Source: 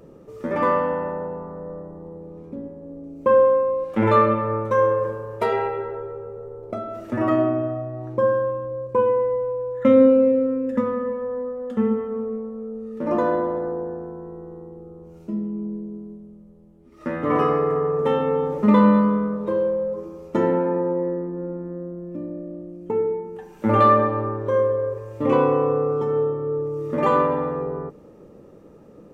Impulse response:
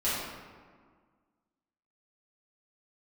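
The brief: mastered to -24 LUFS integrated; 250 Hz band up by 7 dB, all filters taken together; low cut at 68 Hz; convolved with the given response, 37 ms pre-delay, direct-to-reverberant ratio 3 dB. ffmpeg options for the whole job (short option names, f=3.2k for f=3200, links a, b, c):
-filter_complex "[0:a]highpass=68,equalizer=f=250:t=o:g=8.5,asplit=2[a][b];[1:a]atrim=start_sample=2205,adelay=37[c];[b][c]afir=irnorm=-1:irlink=0,volume=-13dB[d];[a][d]amix=inputs=2:normalize=0,volume=-7.5dB"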